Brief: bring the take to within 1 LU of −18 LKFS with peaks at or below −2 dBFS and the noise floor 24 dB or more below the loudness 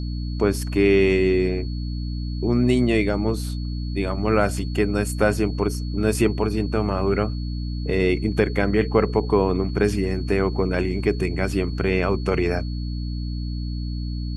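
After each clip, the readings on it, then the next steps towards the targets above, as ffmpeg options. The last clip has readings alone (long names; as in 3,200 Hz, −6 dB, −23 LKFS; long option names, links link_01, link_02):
mains hum 60 Hz; hum harmonics up to 300 Hz; level of the hum −25 dBFS; interfering tone 4,400 Hz; level of the tone −43 dBFS; integrated loudness −23.0 LKFS; sample peak −4.0 dBFS; target loudness −18.0 LKFS
→ -af "bandreject=frequency=60:width_type=h:width=6,bandreject=frequency=120:width_type=h:width=6,bandreject=frequency=180:width_type=h:width=6,bandreject=frequency=240:width_type=h:width=6,bandreject=frequency=300:width_type=h:width=6"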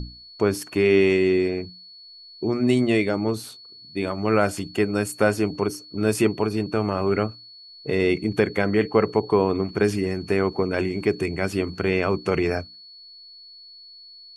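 mains hum none found; interfering tone 4,400 Hz; level of the tone −43 dBFS
→ -af "bandreject=frequency=4400:width=30"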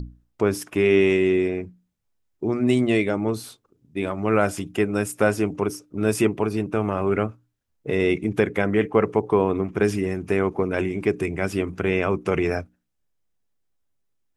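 interfering tone none found; integrated loudness −23.0 LKFS; sample peak −5.0 dBFS; target loudness −18.0 LKFS
→ -af "volume=5dB,alimiter=limit=-2dB:level=0:latency=1"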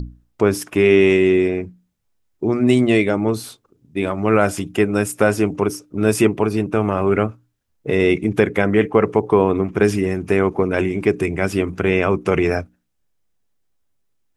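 integrated loudness −18.5 LKFS; sample peak −2.0 dBFS; background noise floor −68 dBFS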